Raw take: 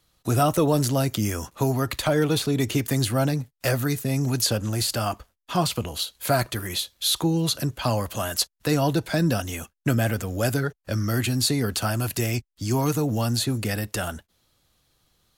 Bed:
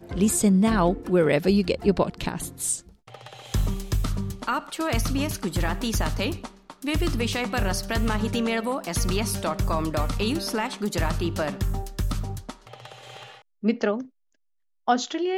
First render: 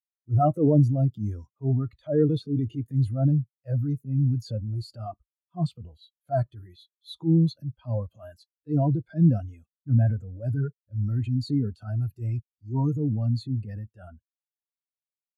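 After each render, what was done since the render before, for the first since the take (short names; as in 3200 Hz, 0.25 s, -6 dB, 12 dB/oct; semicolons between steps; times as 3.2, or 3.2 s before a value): transient shaper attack -10 dB, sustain +4 dB; spectral expander 2.5:1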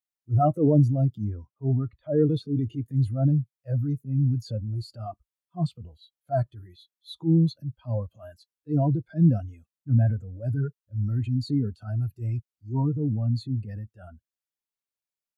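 1.24–2.26 Bessel low-pass 1900 Hz; 12.82–13.36 air absorption 300 m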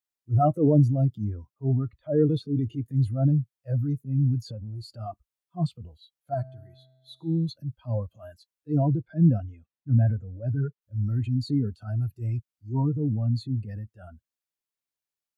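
4.5–5.01 compressor, threshold -33 dBFS; 6.34–7.49 resonator 130 Hz, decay 1.6 s, mix 50%; 8.82–10.82 air absorption 170 m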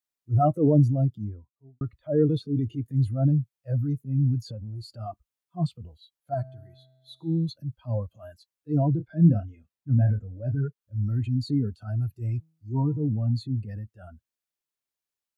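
0.89–1.81 studio fade out; 8.96–10.55 doubler 29 ms -9.5 dB; 12.38–13.32 de-hum 160.6 Hz, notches 33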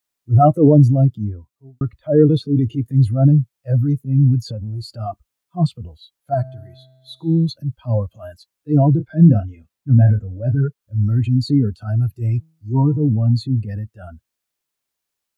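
gain +9.5 dB; limiter -2 dBFS, peak gain reduction 3 dB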